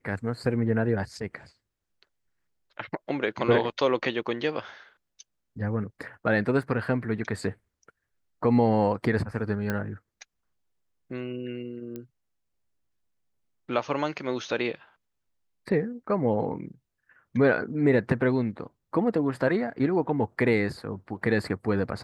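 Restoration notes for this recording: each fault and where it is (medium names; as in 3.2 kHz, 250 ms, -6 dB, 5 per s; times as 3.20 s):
6.63 s: dropout 2.5 ms
9.70 s: pop -15 dBFS
11.96 s: pop -24 dBFS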